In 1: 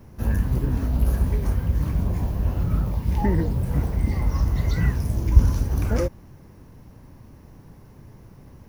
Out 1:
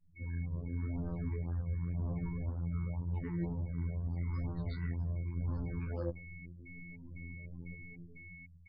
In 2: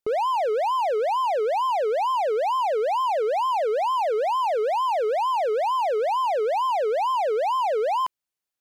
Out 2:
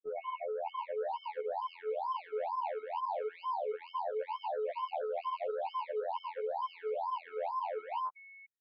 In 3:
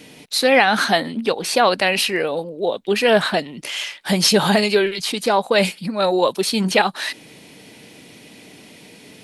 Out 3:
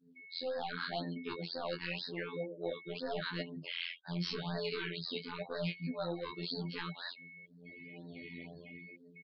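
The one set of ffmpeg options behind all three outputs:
-af "aresample=16000,asoftclip=type=hard:threshold=0.188,aresample=44100,aresample=11025,aresample=44100,afftfilt=real='hypot(re,im)*cos(PI*b)':imag='0':win_size=2048:overlap=0.75,dynaudnorm=f=150:g=11:m=4.47,flanger=delay=18:depth=7.1:speed=0.87,afftdn=nr=32:nf=-39,equalizer=f=150:w=3.6:g=5,aeval=exprs='val(0)+0.00794*sin(2*PI*2200*n/s)':c=same,areverse,acompressor=threshold=0.0631:ratio=8,areverse,afftfilt=real='re*(1-between(b*sr/1024,590*pow(2700/590,0.5+0.5*sin(2*PI*2*pts/sr))/1.41,590*pow(2700/590,0.5+0.5*sin(2*PI*2*pts/sr))*1.41))':imag='im*(1-between(b*sr/1024,590*pow(2700/590,0.5+0.5*sin(2*PI*2*pts/sr))/1.41,590*pow(2700/590,0.5+0.5*sin(2*PI*2*pts/sr))*1.41))':win_size=1024:overlap=0.75,volume=0.355"

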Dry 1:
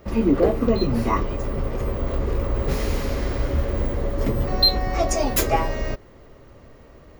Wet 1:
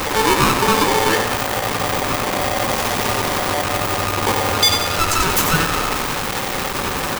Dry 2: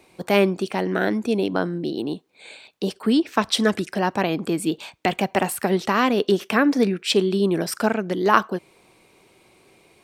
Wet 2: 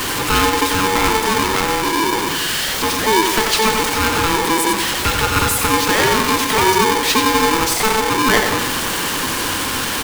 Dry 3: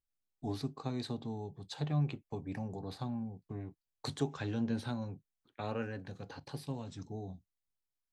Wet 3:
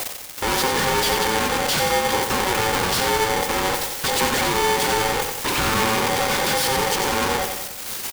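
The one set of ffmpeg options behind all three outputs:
-filter_complex "[0:a]aeval=exprs='val(0)+0.5*0.168*sgn(val(0))':c=same,highpass=100,acrossover=split=320[s0][s1];[s0]acrusher=samples=28:mix=1:aa=0.000001:lfo=1:lforange=44.8:lforate=0.84[s2];[s2][s1]amix=inputs=2:normalize=0,asoftclip=type=tanh:threshold=0.75,aecho=1:1:91|182|273|364|455|546:0.473|0.241|0.123|0.0628|0.032|0.0163,aeval=exprs='val(0)*sgn(sin(2*PI*660*n/s))':c=same"

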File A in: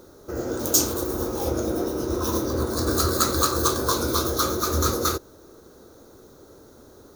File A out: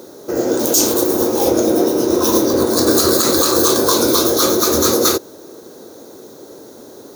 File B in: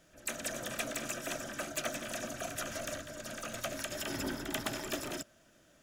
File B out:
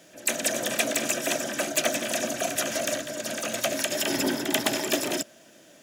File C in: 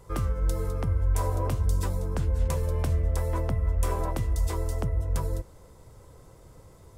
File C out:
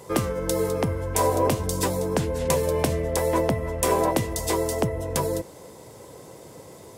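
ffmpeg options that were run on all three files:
-af "highpass=210,equalizer=f=1300:w=2.7:g=-8,alimiter=level_in=4.73:limit=0.891:release=50:level=0:latency=1,volume=0.891"

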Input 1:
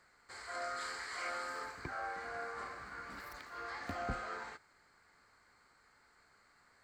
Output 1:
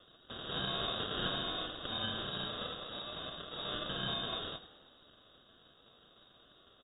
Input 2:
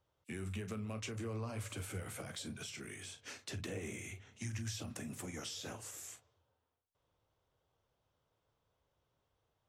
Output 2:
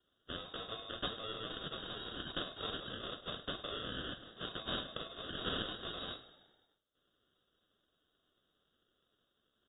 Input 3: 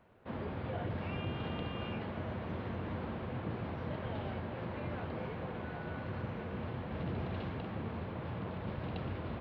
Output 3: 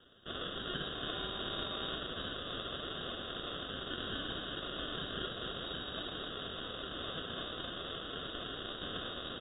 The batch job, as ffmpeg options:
-filter_complex "[0:a]highpass=f=1400:p=1,aresample=16000,acrusher=samples=11:mix=1:aa=0.000001,aresample=44100,aexciter=amount=12.2:drive=9.1:freq=2900,flanger=delay=5.3:depth=5.8:regen=67:speed=0.39:shape=triangular,asplit=7[s0][s1][s2][s3][s4][s5][s6];[s1]adelay=101,afreqshift=-33,volume=0.158[s7];[s2]adelay=202,afreqshift=-66,volume=0.0955[s8];[s3]adelay=303,afreqshift=-99,volume=0.0569[s9];[s4]adelay=404,afreqshift=-132,volume=0.0343[s10];[s5]adelay=505,afreqshift=-165,volume=0.0207[s11];[s6]adelay=606,afreqshift=-198,volume=0.0123[s12];[s0][s7][s8][s9][s10][s11][s12]amix=inputs=7:normalize=0,lowpass=f=3200:t=q:w=0.5098,lowpass=f=3200:t=q:w=0.6013,lowpass=f=3200:t=q:w=0.9,lowpass=f=3200:t=q:w=2.563,afreqshift=-3800,volume=2.99"

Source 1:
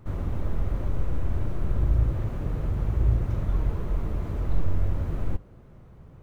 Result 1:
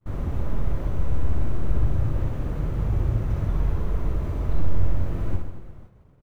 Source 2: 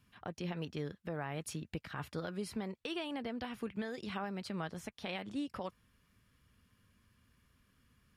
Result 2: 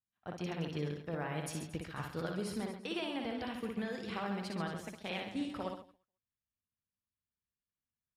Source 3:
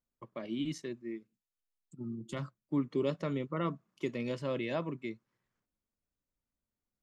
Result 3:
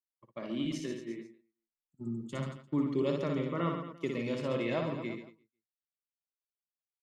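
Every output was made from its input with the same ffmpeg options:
-af "aecho=1:1:60|135|228.8|345.9|492.4:0.631|0.398|0.251|0.158|0.1,agate=range=0.0224:threshold=0.0112:ratio=3:detection=peak"

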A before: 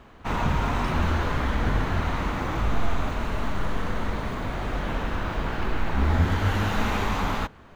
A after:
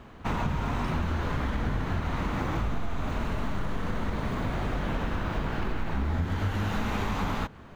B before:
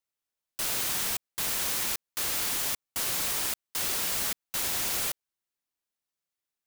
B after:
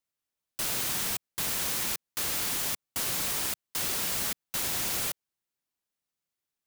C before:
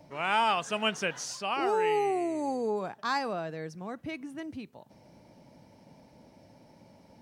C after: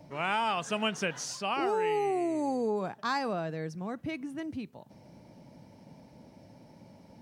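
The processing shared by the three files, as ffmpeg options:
-af "equalizer=f=150:t=o:w=2.1:g=4.5,acompressor=threshold=0.0562:ratio=6"

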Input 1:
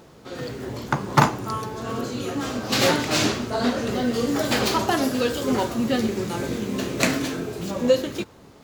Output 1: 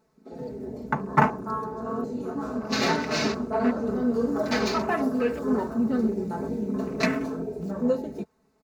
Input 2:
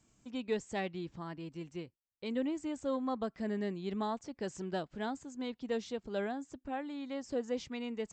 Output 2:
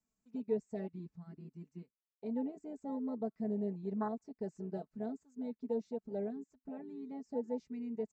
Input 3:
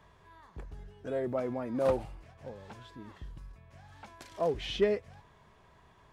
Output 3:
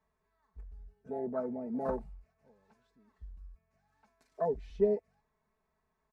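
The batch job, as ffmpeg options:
-af "afwtdn=0.0282,equalizer=f=3200:t=o:w=0.34:g=-11,aecho=1:1:4.6:0.77,volume=0.596"

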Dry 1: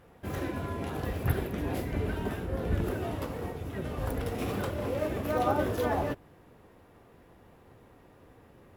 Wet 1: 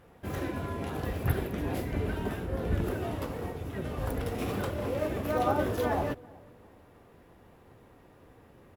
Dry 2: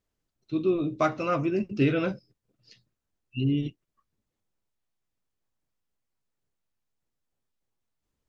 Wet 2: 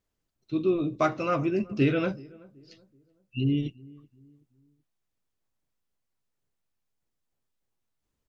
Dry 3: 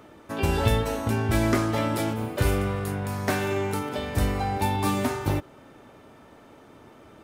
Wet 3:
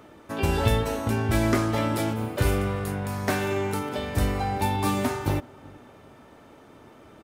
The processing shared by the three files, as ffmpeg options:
-filter_complex "[0:a]asplit=2[s0][s1];[s1]adelay=378,lowpass=f=990:p=1,volume=0.075,asplit=2[s2][s3];[s3]adelay=378,lowpass=f=990:p=1,volume=0.39,asplit=2[s4][s5];[s5]adelay=378,lowpass=f=990:p=1,volume=0.39[s6];[s0][s2][s4][s6]amix=inputs=4:normalize=0"

